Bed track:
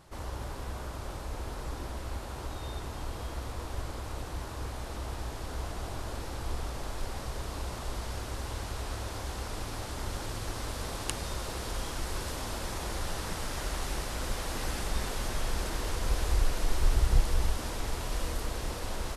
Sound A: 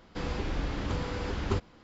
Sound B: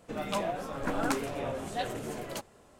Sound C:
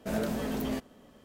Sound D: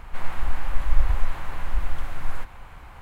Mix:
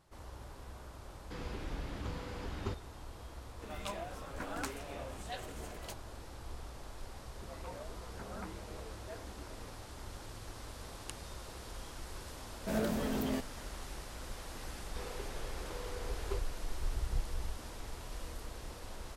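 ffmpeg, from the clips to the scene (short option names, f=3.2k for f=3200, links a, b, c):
-filter_complex "[1:a]asplit=2[a][b];[2:a]asplit=2[c][d];[0:a]volume=-11dB[e];[c]tiltshelf=f=970:g=-3.5[f];[d]highpass=f=240:t=q:w=0.5412,highpass=f=240:t=q:w=1.307,lowpass=f=2.4k:t=q:w=0.5176,lowpass=f=2.4k:t=q:w=0.7071,lowpass=f=2.4k:t=q:w=1.932,afreqshift=-83[g];[b]lowshelf=f=320:t=q:w=3:g=-8.5[h];[a]atrim=end=1.83,asetpts=PTS-STARTPTS,volume=-9.5dB,afade=t=in:d=0.004:c=hsin,afade=t=out:st=1.826:d=0.004:c=hsin,adelay=1150[i];[f]atrim=end=2.79,asetpts=PTS-STARTPTS,volume=-9.5dB,afade=t=in:d=0.004:c=hsin,afade=t=out:st=2.786:d=0.004:c=hsin,adelay=155673S[j];[g]atrim=end=2.79,asetpts=PTS-STARTPTS,volume=-15dB,afade=t=in:d=0.004:c=hsin,afade=t=out:st=2.786:d=0.004:c=hsin,adelay=7320[k];[3:a]atrim=end=1.24,asetpts=PTS-STARTPTS,volume=-2.5dB,afade=t=in:d=0.004:c=hsin,afade=t=out:st=1.236:d=0.004:c=hsin,adelay=12610[l];[h]atrim=end=1.83,asetpts=PTS-STARTPTS,volume=-12dB,afade=t=in:d=0.004:c=hsin,afade=t=out:st=1.826:d=0.004:c=hsin,adelay=14800[m];[e][i][j][k][l][m]amix=inputs=6:normalize=0"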